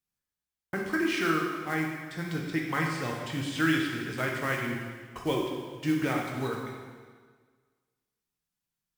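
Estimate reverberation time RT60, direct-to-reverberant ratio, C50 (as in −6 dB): 1.6 s, −1.0 dB, 2.0 dB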